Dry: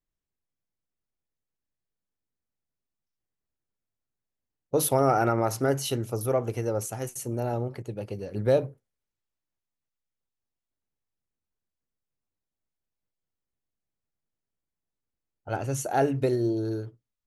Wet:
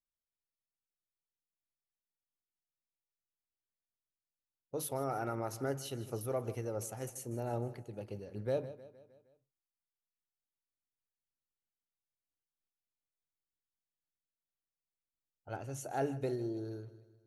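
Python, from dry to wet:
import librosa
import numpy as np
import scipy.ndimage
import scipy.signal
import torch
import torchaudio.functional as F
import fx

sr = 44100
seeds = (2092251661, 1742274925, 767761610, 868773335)

y = fx.rider(x, sr, range_db=4, speed_s=2.0)
y = fx.echo_feedback(y, sr, ms=155, feedback_pct=53, wet_db=-17.0)
y = fx.am_noise(y, sr, seeds[0], hz=5.7, depth_pct=55)
y = y * librosa.db_to_amplitude(-7.5)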